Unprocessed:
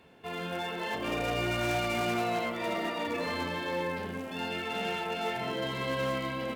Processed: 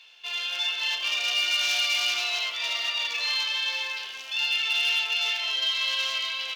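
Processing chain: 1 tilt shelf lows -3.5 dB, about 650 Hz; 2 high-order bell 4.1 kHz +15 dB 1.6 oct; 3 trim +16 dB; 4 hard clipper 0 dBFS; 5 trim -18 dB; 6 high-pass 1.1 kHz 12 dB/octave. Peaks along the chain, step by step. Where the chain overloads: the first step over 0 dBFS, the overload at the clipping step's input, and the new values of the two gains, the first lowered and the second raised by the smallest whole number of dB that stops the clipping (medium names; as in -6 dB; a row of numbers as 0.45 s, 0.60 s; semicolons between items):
-20.5 dBFS, -10.0 dBFS, +6.0 dBFS, 0.0 dBFS, -18.0 dBFS, -15.0 dBFS; step 3, 6.0 dB; step 3 +10 dB, step 5 -12 dB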